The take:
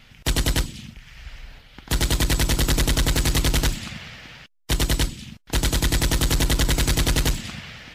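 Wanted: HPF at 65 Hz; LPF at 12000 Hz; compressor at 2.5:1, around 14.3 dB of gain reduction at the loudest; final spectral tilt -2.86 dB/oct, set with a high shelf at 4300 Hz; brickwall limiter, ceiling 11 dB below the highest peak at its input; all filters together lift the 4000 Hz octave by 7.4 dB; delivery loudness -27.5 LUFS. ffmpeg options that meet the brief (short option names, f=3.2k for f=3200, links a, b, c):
-af "highpass=65,lowpass=12k,equalizer=f=4k:t=o:g=4.5,highshelf=f=4.3k:g=8.5,acompressor=threshold=-36dB:ratio=2.5,volume=9.5dB,alimiter=limit=-16dB:level=0:latency=1"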